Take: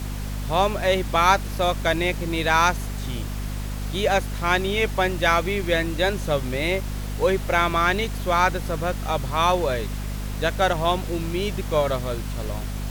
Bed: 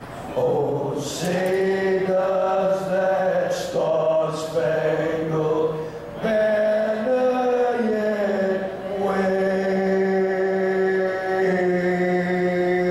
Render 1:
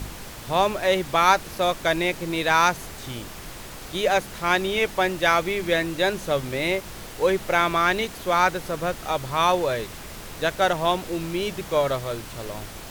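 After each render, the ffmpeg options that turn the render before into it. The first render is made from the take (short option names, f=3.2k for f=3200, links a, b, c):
-af "bandreject=f=50:t=h:w=4,bandreject=f=100:t=h:w=4,bandreject=f=150:t=h:w=4,bandreject=f=200:t=h:w=4,bandreject=f=250:t=h:w=4"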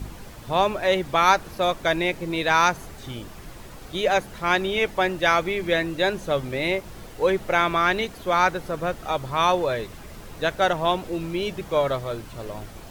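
-af "afftdn=nr=8:nf=-39"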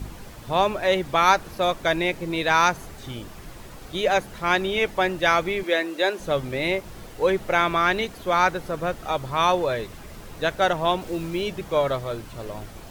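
-filter_complex "[0:a]asettb=1/sr,asplit=3[a][b][c];[a]atrim=end=5.634[d];[b]atrim=start=5.63:end=6.2,asetpts=PTS-STARTPTS,afade=t=in:d=0.004:c=qsin,afade=t=out:st=0.566:d=0.004:c=qsin,highpass=f=280:w=0.5412,highpass=f=280:w=1.3066[e];[c]atrim=start=6.196[f];[d][e]acrossfade=d=0.004:c1=hsin:c2=qsin[g];[g][f]acrossfade=d=0.004:c1=qsin:c2=hsin,asettb=1/sr,asplit=3[h][i][j];[h]atrim=end=11.014[k];[i]atrim=start=11.01:end=11.42,asetpts=PTS-STARTPTS,afade=t=in:d=0.004:c=qsin,afade=t=out:st=0.406:d=0.004:c=qsin,acrusher=bits=6:mix=0:aa=0.5[l];[j]atrim=start=11.416[m];[k][l]acrossfade=d=0.004:c1=hsin:c2=qsin[n];[n][m]acrossfade=d=0.004:c1=qsin:c2=hsin"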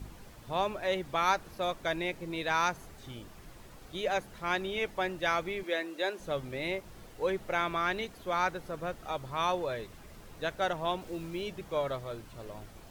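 -af "volume=-10dB"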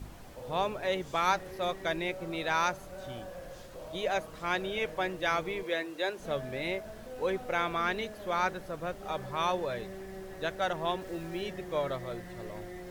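-filter_complex "[1:a]volume=-24dB[a];[0:a][a]amix=inputs=2:normalize=0"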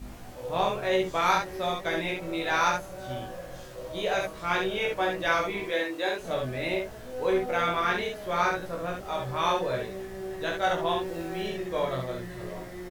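-filter_complex "[0:a]asplit=2[a][b];[b]adelay=16,volume=-4dB[c];[a][c]amix=inputs=2:normalize=0,aecho=1:1:24|69:0.668|0.708"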